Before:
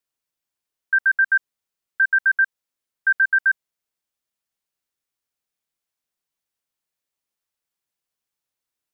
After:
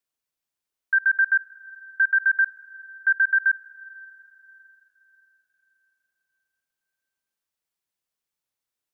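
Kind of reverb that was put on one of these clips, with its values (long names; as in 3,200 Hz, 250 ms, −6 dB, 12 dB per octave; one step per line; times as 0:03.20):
comb and all-pass reverb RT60 4.2 s, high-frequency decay 0.95×, pre-delay 5 ms, DRR 17.5 dB
level −2 dB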